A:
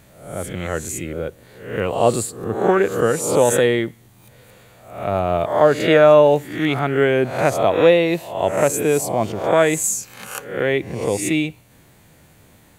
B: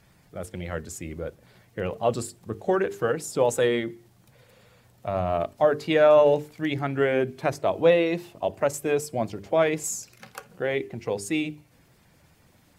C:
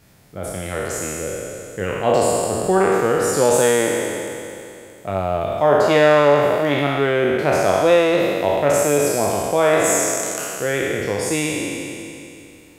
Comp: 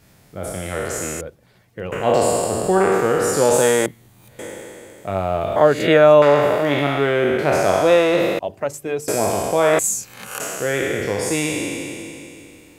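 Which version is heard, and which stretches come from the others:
C
1.21–1.92 s: from B
3.86–4.39 s: from A
5.56–6.22 s: from A
8.39–9.08 s: from B
9.79–10.40 s: from A

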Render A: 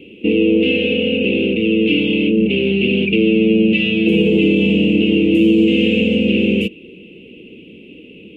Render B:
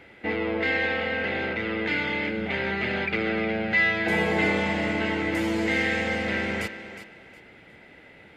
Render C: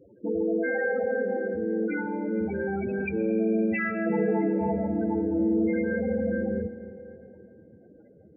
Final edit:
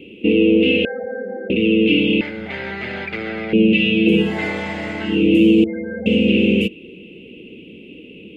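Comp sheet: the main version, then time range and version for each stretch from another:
A
0.85–1.50 s: from C
2.21–3.53 s: from B
4.26–5.13 s: from B, crossfade 0.24 s
5.64–6.06 s: from C

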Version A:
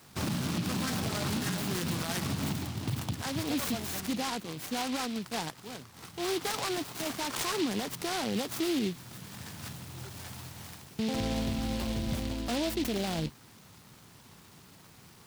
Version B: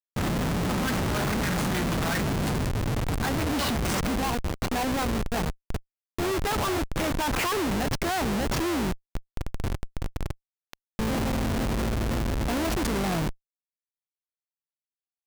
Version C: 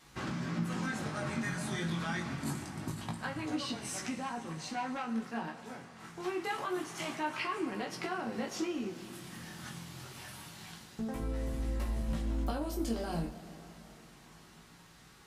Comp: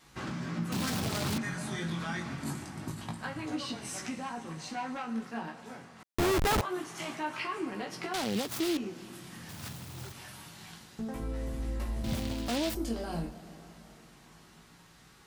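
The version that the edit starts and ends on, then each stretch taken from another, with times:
C
0.72–1.38 s: from A
6.03–6.61 s: from B
8.14–8.77 s: from A
9.49–10.12 s: from A
12.04–12.75 s: from A

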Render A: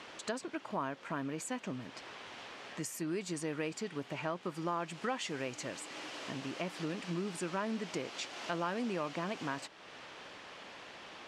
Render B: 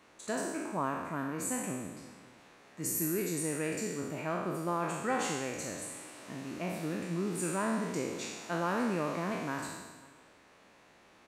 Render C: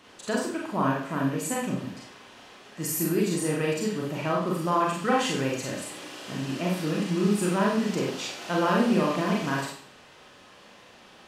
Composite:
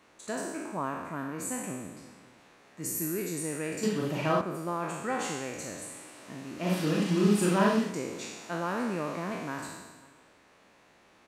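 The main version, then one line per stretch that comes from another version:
B
3.83–4.41 s: from C
6.65–7.85 s: from C, crossfade 0.16 s
not used: A

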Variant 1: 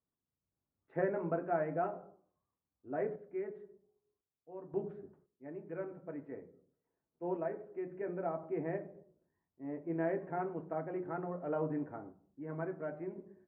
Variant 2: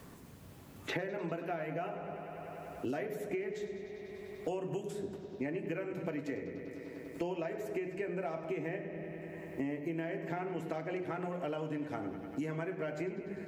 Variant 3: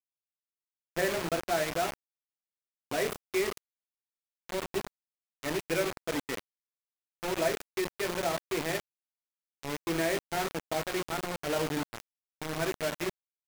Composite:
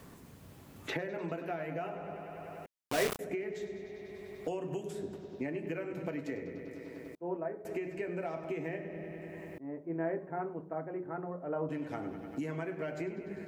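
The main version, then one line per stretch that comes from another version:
2
2.66–3.19 s: from 3
7.15–7.65 s: from 1
9.58–11.69 s: from 1

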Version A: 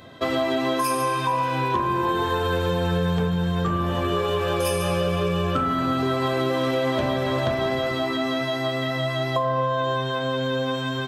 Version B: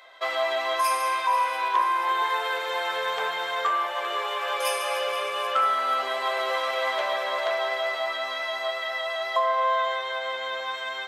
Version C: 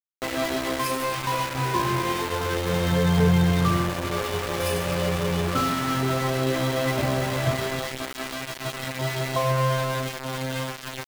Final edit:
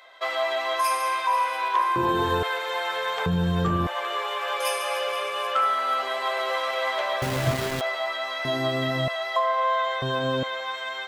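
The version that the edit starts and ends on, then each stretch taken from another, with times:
B
1.96–2.43 s: from A
3.26–3.87 s: from A
7.22–7.81 s: from C
8.45–9.08 s: from A
10.02–10.43 s: from A

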